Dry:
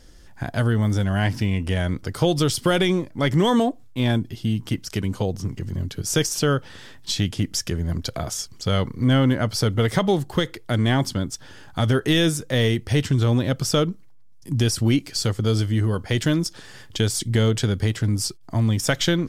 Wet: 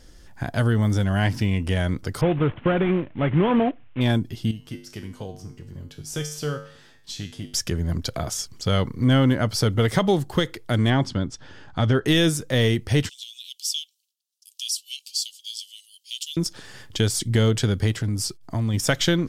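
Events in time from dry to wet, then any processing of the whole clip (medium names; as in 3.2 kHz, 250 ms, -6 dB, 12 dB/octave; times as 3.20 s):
2.21–4.01 s: CVSD coder 16 kbps
4.51–7.54 s: feedback comb 50 Hz, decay 0.51 s, harmonics odd, mix 80%
10.90–12.06 s: distance through air 100 m
13.09–16.37 s: steep high-pass 2.8 kHz 72 dB/octave
18.01–18.74 s: compression 2:1, threshold -23 dBFS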